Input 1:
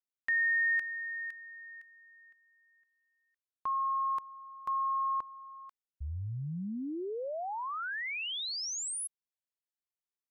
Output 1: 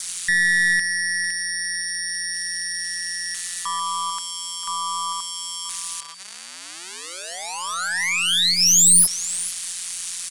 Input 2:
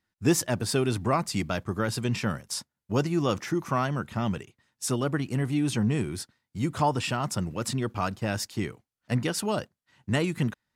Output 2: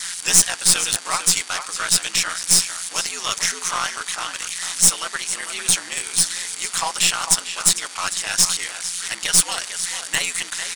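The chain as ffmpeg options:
-filter_complex "[0:a]aeval=exprs='val(0)+0.5*0.0188*sgn(val(0))':c=same,aeval=exprs='val(0)*sin(2*PI*88*n/s)':c=same,highpass=1.1k,asplit=2[a][b];[b]adelay=449,volume=-8dB,highshelf=f=4k:g=-10.1[c];[a][c]amix=inputs=2:normalize=0,aresample=22050,aresample=44100,crystalizer=i=9:c=0,aeval=exprs='(tanh(3.55*val(0)+0.4)-tanh(0.4))/3.55':c=same,aeval=exprs='val(0)+0.00794*sin(2*PI*4600*n/s)':c=same,adynamicequalizer=threshold=0.00501:dfrequency=2700:dqfactor=6.8:tfrequency=2700:tqfactor=6.8:attack=5:release=100:ratio=0.375:range=2:mode=cutabove:tftype=bell,bandreject=f=4.7k:w=11,volume=5dB"

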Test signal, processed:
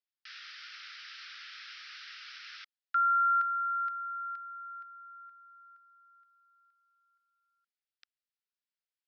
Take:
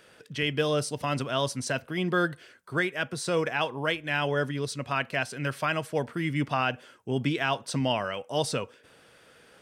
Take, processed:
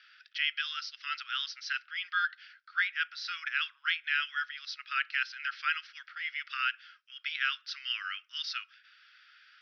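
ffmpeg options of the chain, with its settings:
-af "asuperpass=centerf=2700:order=20:qfactor=0.64"

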